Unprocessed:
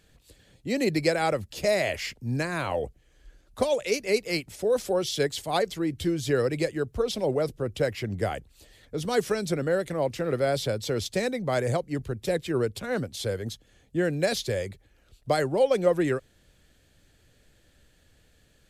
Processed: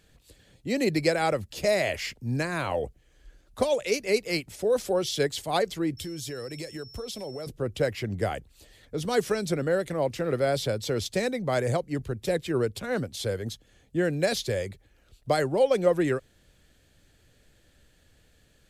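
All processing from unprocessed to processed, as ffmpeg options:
ffmpeg -i in.wav -filter_complex "[0:a]asettb=1/sr,asplit=3[link_01][link_02][link_03];[link_01]atrim=end=5.974[link_04];[link_02]atrim=start=5.97:end=7.47,asetpts=PTS-STARTPTS,afade=type=in:duration=0.004:curve=qsin,afade=type=out:start_time=1.496:duration=0.004:curve=qsin,highshelf=frequency=4600:gain=11,acompressor=threshold=-34dB:ratio=5:attack=3.2:release=140:knee=1:detection=peak,aeval=exprs='val(0)+0.00447*sin(2*PI*5400*n/s)':channel_layout=same[link_05];[link_03]atrim=start=7.466[link_06];[link_04][link_05]acrossfade=duration=0.004:curve1=hsin:curve2=qsin[link_07];[link_07][link_06]acrossfade=duration=0.004:curve1=qsin:curve2=hsin" out.wav

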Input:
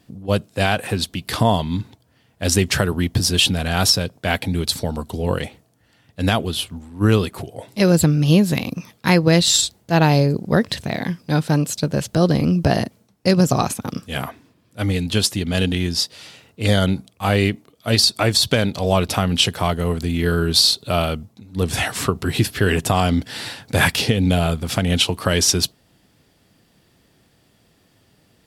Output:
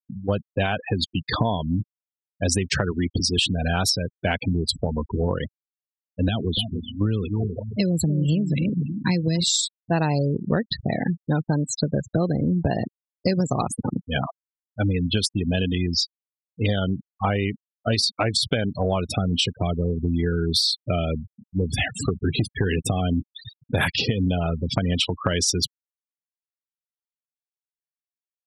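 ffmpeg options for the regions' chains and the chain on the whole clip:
ffmpeg -i in.wav -filter_complex "[0:a]asettb=1/sr,asplit=3[link_01][link_02][link_03];[link_01]atrim=end=2.914[link_04];[link_02]atrim=start=2.91:end=3.37,asetpts=PTS-STARTPTS,afade=type=in:duration=0.004:curve=qsin,afade=type=out:start_time=0.456:duration=0.004:curve=qsin,equalizer=frequency=120:width=1.8:gain=-10.5,bandreject=frequency=1600:width=17,adynamicsmooth=sensitivity=7:basefreq=2100[link_05];[link_03]atrim=start=3.366[link_06];[link_04][link_05]acrossfade=duration=0.004:curve1=hsin:curve2=qsin[link_07];[link_07][link_06]acrossfade=duration=0.004:curve1=qsin:curve2=hsin,asettb=1/sr,asplit=3[link_08][link_09][link_10];[link_08]atrim=end=4.674[link_11];[link_09]atrim=start=4.67:end=5.21,asetpts=PTS-STARTPTS,afade=type=in:duration=0.004:curve=qsin,afade=type=out:start_time=0.536:duration=0.004:curve=qsin,bandreject=frequency=60:width_type=h:width=6,bandreject=frequency=120:width_type=h:width=6,bandreject=frequency=180:width_type=h:width=6,bandreject=frequency=240:width_type=h:width=6,bandreject=frequency=300:width_type=h:width=6,bandreject=frequency=360:width_type=h:width=6,aeval=exprs='val(0)+0.00794*(sin(2*PI*50*n/s)+sin(2*PI*2*50*n/s)/2+sin(2*PI*3*50*n/s)/3+sin(2*PI*4*50*n/s)/4+sin(2*PI*5*50*n/s)/5)':channel_layout=same[link_12];[link_10]atrim=start=5.206[link_13];[link_11][link_12]acrossfade=duration=0.004:curve1=hsin:curve2=qsin[link_14];[link_14][link_13]acrossfade=duration=0.004:curve1=qsin:curve2=hsin,asettb=1/sr,asplit=3[link_15][link_16][link_17];[link_15]atrim=end=6.284[link_18];[link_16]atrim=start=6.28:end=9.44,asetpts=PTS-STARTPTS,afade=type=in:duration=0.004:curve=qsin,afade=type=out:start_time=3.156:duration=0.004:curve=qsin,acrossover=split=290|3000[link_19][link_20][link_21];[link_20]acompressor=threshold=-24dB:ratio=6:attack=3.2:release=140:knee=2.83:detection=peak[link_22];[link_19][link_22][link_21]amix=inputs=3:normalize=0,asplit=2[link_23][link_24];[link_24]adelay=289,lowpass=frequency=4500:poles=1,volume=-9dB,asplit=2[link_25][link_26];[link_26]adelay=289,lowpass=frequency=4500:poles=1,volume=0.27,asplit=2[link_27][link_28];[link_28]adelay=289,lowpass=frequency=4500:poles=1,volume=0.27[link_29];[link_23][link_25][link_27][link_29]amix=inputs=4:normalize=0,atrim=end_sample=139356[link_30];[link_17]atrim=start=9.436[link_31];[link_18][link_30]acrossfade=duration=0.004:curve1=hsin:curve2=qsin[link_32];[link_32][link_31]acrossfade=duration=0.004:curve1=qsin:curve2=hsin,asettb=1/sr,asplit=3[link_33][link_34][link_35];[link_33]atrim=end=19.104[link_36];[link_34]atrim=start=19.1:end=23.65,asetpts=PTS-STARTPTS,afade=type=in:duration=0.004:curve=qsin,afade=type=out:start_time=4.546:duration=0.004:curve=qsin,equalizer=frequency=1000:width=1.7:gain=-11,asoftclip=type=hard:threshold=-10.5dB[link_37];[link_35]atrim=start=23.646[link_38];[link_36][link_37]acrossfade=duration=0.004:curve1=hsin:curve2=qsin[link_39];[link_39][link_38]acrossfade=duration=0.004:curve1=qsin:curve2=hsin,afftfilt=real='re*gte(hypot(re,im),0.1)':imag='im*gte(hypot(re,im),0.1)':win_size=1024:overlap=0.75,acompressor=threshold=-22dB:ratio=6,volume=3dB" out.wav

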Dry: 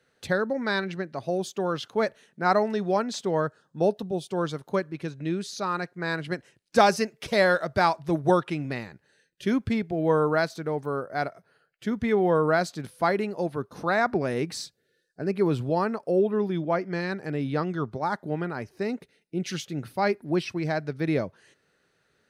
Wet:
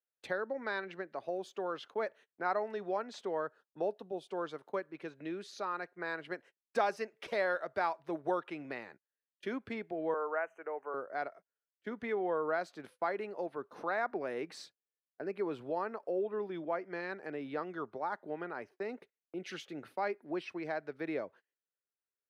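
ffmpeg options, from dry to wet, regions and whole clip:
ffmpeg -i in.wav -filter_complex "[0:a]asettb=1/sr,asplit=3[link_01][link_02][link_03];[link_01]atrim=end=10.144[link_04];[link_02]atrim=start=10.14:end=10.94,asetpts=PTS-STARTPTS,afade=type=in:duration=0.004:curve=qsin,afade=type=out:start_time=0.796:duration=0.004:curve=qsin,asuperstop=centerf=4300:order=20:qfactor=1.4,acrossover=split=380 3800:gain=0.0708 1 0.224[link_05][link_06][link_07];[link_05][link_06][link_07]amix=inputs=3:normalize=0,bandreject=frequency=60:width_type=h:width=6,bandreject=frequency=120:width_type=h:width=6,bandreject=frequency=180:width_type=h:width=6[link_08];[link_03]atrim=start=10.936[link_09];[link_04][link_08]acrossfade=duration=0.004:curve1=hsin:curve2=qsin[link_10];[link_10][link_09]acrossfade=duration=0.004:curve1=qsin:curve2=hsin,agate=range=-31dB:threshold=-44dB:ratio=16:detection=peak,acrossover=split=300 3100:gain=0.0891 1 0.224[link_11][link_12][link_13];[link_11][link_12][link_13]amix=inputs=3:normalize=0,acompressor=threshold=-39dB:ratio=1.5,volume=-3dB" out.wav

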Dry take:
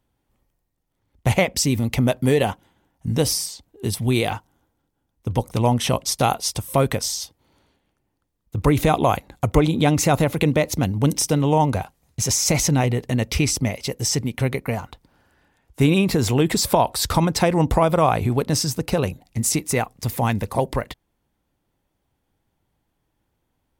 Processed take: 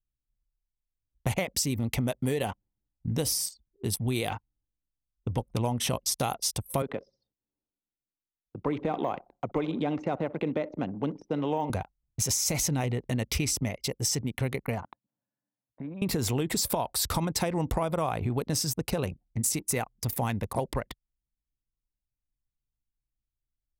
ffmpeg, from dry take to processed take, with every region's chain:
ffmpeg -i in.wav -filter_complex "[0:a]asettb=1/sr,asplit=3[link_01][link_02][link_03];[link_01]atrim=end=6.824[link_04];[link_02]atrim=start=6.82:end=11.7,asetpts=PTS-STARTPTS,afade=type=in:duration=0.004:curve=qsin,afade=type=out:start_time=4.876:duration=0.004:curve=qsin,deesser=0.85,acrossover=split=190 5000:gain=0.112 1 0.141[link_05][link_06][link_07];[link_05][link_06][link_07]amix=inputs=3:normalize=0,aecho=1:1:62|124|186|248|310:0.141|0.0791|0.0443|0.0248|0.0139,atrim=end_sample=215208[link_08];[link_03]atrim=start=11.696[link_09];[link_04][link_08]acrossfade=duration=0.004:curve1=hsin:curve2=qsin[link_10];[link_10][link_09]acrossfade=duration=0.004:curve1=qsin:curve2=hsin,asettb=1/sr,asplit=3[link_11][link_12][link_13];[link_11]atrim=end=14.834[link_14];[link_12]atrim=start=14.83:end=16.02,asetpts=PTS-STARTPTS,afade=type=in:duration=0.004:curve=qsin,afade=type=out:start_time=1.186:duration=0.004:curve=qsin,acompressor=threshold=-29dB:ratio=6:attack=3.2:release=140:knee=1:detection=peak,highpass=frequency=150:width=0.5412,highpass=frequency=150:width=1.3066,equalizer=frequency=270:width_type=q:width=4:gain=4,equalizer=frequency=400:width_type=q:width=4:gain=-10,equalizer=frequency=610:width_type=q:width=4:gain=8,equalizer=frequency=1000:width_type=q:width=4:gain=5,equalizer=frequency=1700:width_type=q:width=4:gain=7,equalizer=frequency=2900:width_type=q:width=4:gain=-9,lowpass=frequency=3500:width=0.5412,lowpass=frequency=3500:width=1.3066[link_15];[link_13]atrim=start=16.016[link_16];[link_14][link_15]acrossfade=duration=0.004:curve1=hsin:curve2=qsin[link_17];[link_17][link_16]acrossfade=duration=0.004:curve1=qsin:curve2=hsin,anlmdn=15.8,highshelf=frequency=7700:gain=8.5,acompressor=threshold=-19dB:ratio=6,volume=-5.5dB" out.wav

